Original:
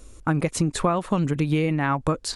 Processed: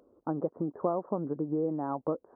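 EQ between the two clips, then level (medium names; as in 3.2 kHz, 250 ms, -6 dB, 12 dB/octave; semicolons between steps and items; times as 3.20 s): Gaussian low-pass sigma 11 samples; high-pass 390 Hz 12 dB/octave; 0.0 dB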